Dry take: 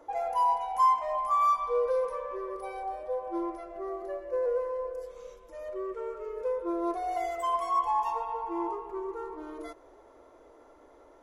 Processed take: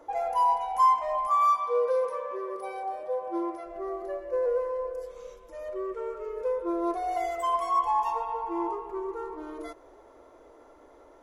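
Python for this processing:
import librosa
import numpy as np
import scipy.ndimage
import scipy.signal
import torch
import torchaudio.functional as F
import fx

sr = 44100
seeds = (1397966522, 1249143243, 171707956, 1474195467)

y = fx.highpass(x, sr, hz=fx.line((1.27, 260.0), (3.65, 98.0)), slope=12, at=(1.27, 3.65), fade=0.02)
y = y * 10.0 ** (2.0 / 20.0)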